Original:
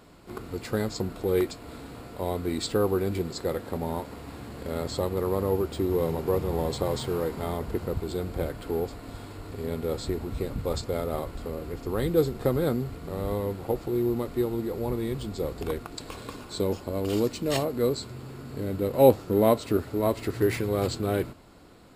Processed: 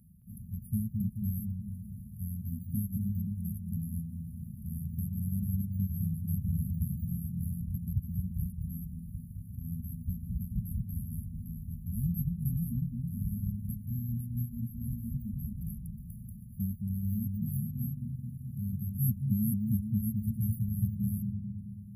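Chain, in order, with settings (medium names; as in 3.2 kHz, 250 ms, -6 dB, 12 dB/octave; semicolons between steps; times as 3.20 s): high-pass 52 Hz; reverb removal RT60 1.1 s; brick-wall FIR band-stop 230–10000 Hz; on a send: bucket-brigade echo 217 ms, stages 4096, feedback 60%, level -3 dB; on the sum: trim +1.5 dB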